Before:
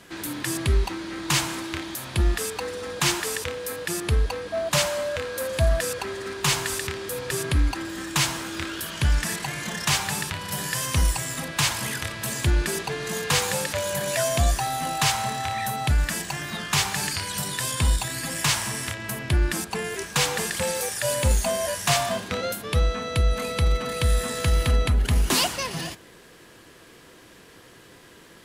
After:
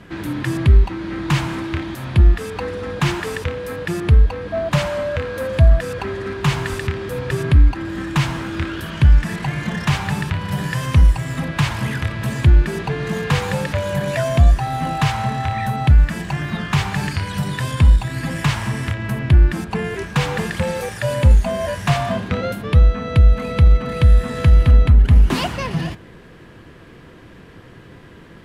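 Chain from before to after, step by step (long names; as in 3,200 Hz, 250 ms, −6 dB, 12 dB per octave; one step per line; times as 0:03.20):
bass and treble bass +10 dB, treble −15 dB
in parallel at −0.5 dB: downward compressor, threshold −22 dBFS, peak gain reduction 14.5 dB
on the sum: level −1 dB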